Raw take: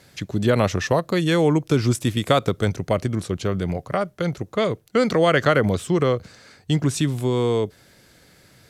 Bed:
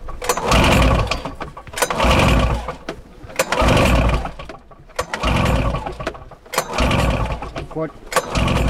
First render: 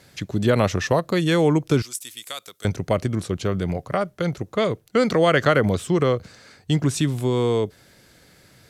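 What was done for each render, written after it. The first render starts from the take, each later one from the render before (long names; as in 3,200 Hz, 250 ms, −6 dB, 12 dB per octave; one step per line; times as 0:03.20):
0:01.82–0:02.65: first difference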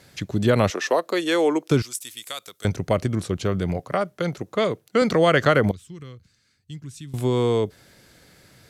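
0:00.70–0:01.71: high-pass filter 300 Hz 24 dB per octave
0:03.80–0:05.02: Bessel high-pass filter 160 Hz
0:05.71–0:07.14: guitar amp tone stack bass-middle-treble 6-0-2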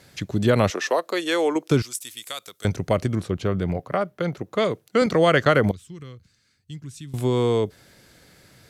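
0:00.90–0:01.56: low-shelf EQ 230 Hz −9 dB
0:03.19–0:04.53: parametric band 7,900 Hz −8 dB 1.9 octaves
0:05.06–0:05.64: downward expander −24 dBFS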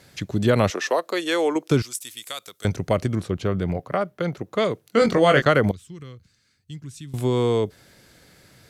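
0:04.82–0:05.42: double-tracking delay 22 ms −5 dB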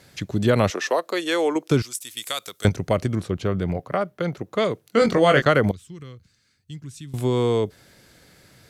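0:02.17–0:02.69: clip gain +5 dB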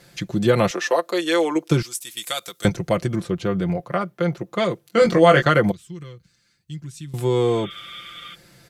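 0:07.50–0:08.32: healed spectral selection 1,100–3,700 Hz before
comb filter 5.8 ms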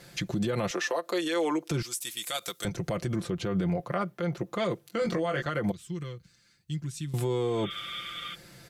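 downward compressor 10 to 1, threshold −21 dBFS, peak gain reduction 13.5 dB
brickwall limiter −20.5 dBFS, peak gain reduction 11.5 dB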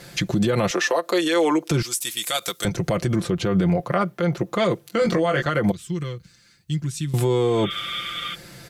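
level +8.5 dB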